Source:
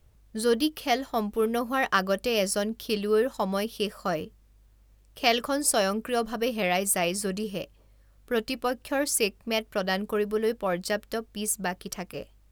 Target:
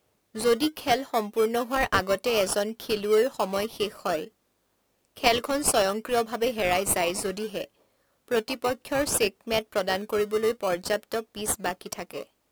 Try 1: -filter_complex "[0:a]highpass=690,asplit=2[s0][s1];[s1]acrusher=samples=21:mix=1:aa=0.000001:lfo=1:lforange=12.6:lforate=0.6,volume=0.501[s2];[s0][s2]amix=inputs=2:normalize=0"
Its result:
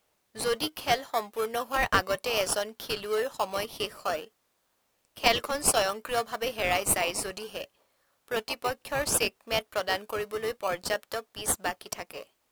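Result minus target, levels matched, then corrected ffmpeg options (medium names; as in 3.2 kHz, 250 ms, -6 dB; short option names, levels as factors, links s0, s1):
250 Hz band -6.0 dB
-filter_complex "[0:a]highpass=310,asplit=2[s0][s1];[s1]acrusher=samples=21:mix=1:aa=0.000001:lfo=1:lforange=12.6:lforate=0.6,volume=0.501[s2];[s0][s2]amix=inputs=2:normalize=0"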